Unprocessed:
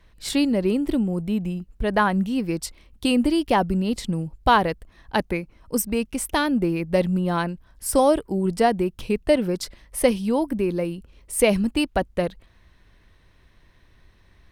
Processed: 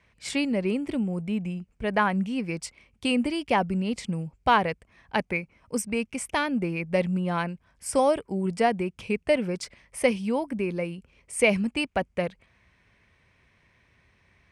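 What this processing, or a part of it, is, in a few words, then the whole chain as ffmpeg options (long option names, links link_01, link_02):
car door speaker: -af "highpass=85,equalizer=frequency=320:width_type=q:width=4:gain=-6,equalizer=frequency=2300:width_type=q:width=4:gain=9,equalizer=frequency=3900:width_type=q:width=4:gain=-6,lowpass=frequency=9400:width=0.5412,lowpass=frequency=9400:width=1.3066,volume=-3.5dB"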